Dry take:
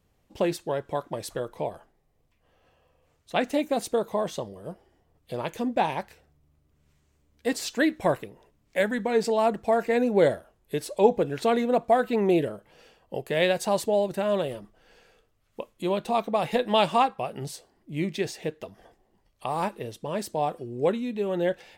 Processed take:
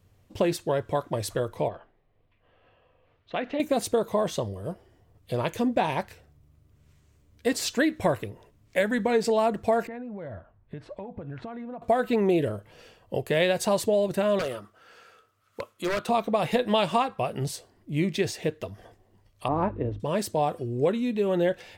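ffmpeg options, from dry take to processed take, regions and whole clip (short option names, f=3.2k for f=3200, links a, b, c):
-filter_complex "[0:a]asettb=1/sr,asplit=3[a][b][c];[a]atrim=end=1.684[d];[b]atrim=start=1.68:end=3.6,asetpts=PTS-STARTPTS,afade=t=in:d=0.004:c=qsin,afade=t=out:st=1.916:d=0.004:c=qsin,lowpass=f=3.5k:w=0.5412,lowpass=f=3.5k:w=1.3066,acompressor=threshold=-29dB:ratio=3:attack=3.2:release=140:knee=1:detection=peak,equalizer=f=86:t=o:w=2.4:g=-8.5[e];[c]atrim=start=3.596[f];[d][e]acrossfade=d=0.004:c1=hsin:c2=qsin[g];[g][f]acrossfade=d=0.004:c1=qsin:c2=hsin,asettb=1/sr,asplit=3[h][i][j];[h]atrim=end=9.874[k];[i]atrim=start=9.87:end=11.82,asetpts=PTS-STARTPTS,afade=t=in:d=0.004:c=qsin,afade=t=out:st=1.946:d=0.004:c=qsin,lowpass=1.4k,equalizer=f=420:t=o:w=1:g=-10.5,acompressor=threshold=-37dB:ratio=20:attack=3.2:release=140:knee=1:detection=peak[l];[j]atrim=start=11.816[m];[k][l]acrossfade=d=0.004:c1=hsin:c2=qsin[n];[n][m]acrossfade=d=0.004:c1=qsin:c2=hsin,asettb=1/sr,asplit=3[o][p][q];[o]atrim=end=14.394[r];[p]atrim=start=14.39:end=16.09,asetpts=PTS-STARTPTS,afade=t=in:d=0.004:c=qsin,afade=t=out:st=1.696:d=0.004:c=qsin,highpass=f=400:p=1,equalizer=f=1.3k:t=o:w=0.32:g=13.5,aeval=exprs='0.0562*(abs(mod(val(0)/0.0562+3,4)-2)-1)':c=same[s];[q]atrim=start=16.086[t];[r][s]acrossfade=d=0.004:c1=hsin:c2=qsin[u];[u][t]acrossfade=d=0.004:c1=qsin:c2=hsin,asettb=1/sr,asplit=3[v][w][x];[v]atrim=end=19.484[y];[w]atrim=start=19.48:end=20,asetpts=PTS-STARTPTS,afade=t=in:d=0.004:c=qsin,afade=t=out:st=0.516:d=0.004:c=qsin,lowpass=1.3k,equalizer=f=290:w=5.5:g=14,aeval=exprs='val(0)+0.00447*(sin(2*PI*50*n/s)+sin(2*PI*2*50*n/s)/2+sin(2*PI*3*50*n/s)/3+sin(2*PI*4*50*n/s)/4+sin(2*PI*5*50*n/s)/5)':c=same[z];[x]atrim=start=19.996[aa];[y][z]acrossfade=d=0.004:c1=hsin:c2=qsin[ab];[ab][aa]acrossfade=d=0.004:c1=qsin:c2=hsin,equalizer=f=100:w=3:g=11.5,bandreject=f=820:w=12,acompressor=threshold=-23dB:ratio=4,volume=3.5dB"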